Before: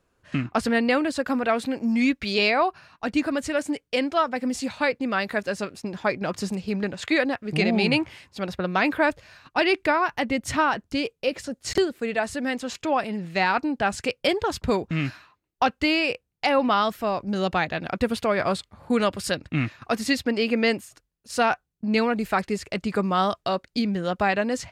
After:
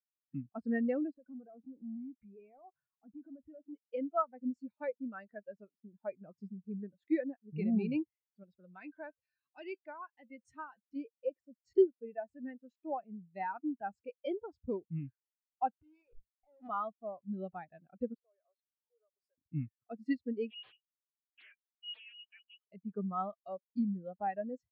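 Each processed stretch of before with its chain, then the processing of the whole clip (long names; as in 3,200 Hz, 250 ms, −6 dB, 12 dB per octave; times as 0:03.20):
0:01.14–0:03.73: downward compressor 4 to 1, threshold −34 dBFS + leveller curve on the samples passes 3 + high-frequency loss of the air 440 metres
0:08.43–0:10.96: high-shelf EQ 2,400 Hz +9.5 dB + upward compression, threshold −21 dBFS + tuned comb filter 520 Hz, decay 0.22 s, mix 50%
0:15.73–0:16.69: comparator with hysteresis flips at −32 dBFS + mains-hum notches 50/100/150/200/250 Hz + compressor whose output falls as the input rises −30 dBFS, ratio −0.5
0:18.14–0:19.38: downward compressor 5 to 1, threshold −36 dBFS + linear-phase brick-wall high-pass 370 Hz + gain into a clipping stage and back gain 32 dB
0:20.50–0:22.67: downward compressor 1.5 to 1, threshold −34 dBFS + voice inversion scrambler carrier 3,100 Hz + highs frequency-modulated by the lows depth 0.7 ms
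whole clip: high-shelf EQ 9,600 Hz +2 dB; every bin expanded away from the loudest bin 2.5 to 1; level −5.5 dB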